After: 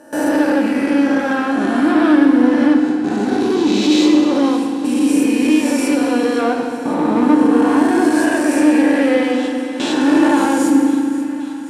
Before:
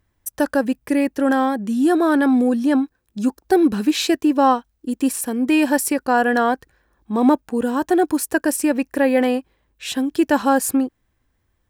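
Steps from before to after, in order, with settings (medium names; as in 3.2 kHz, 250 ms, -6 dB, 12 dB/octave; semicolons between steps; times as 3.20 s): reverse spectral sustain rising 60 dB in 2.17 s; gate with hold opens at -11 dBFS; time-frequency box 3.40–6.39 s, 590–2000 Hz -10 dB; in parallel at -1 dB: peak limiter -9 dBFS, peak gain reduction 9 dB; on the sum: saturation -8.5 dBFS, distortion -14 dB; band-pass 110–6400 Hz; thinning echo 534 ms, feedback 72%, high-pass 530 Hz, level -16 dB; FDN reverb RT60 2.3 s, low-frequency decay 1.6×, high-frequency decay 0.8×, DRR 1.5 dB; trim -5 dB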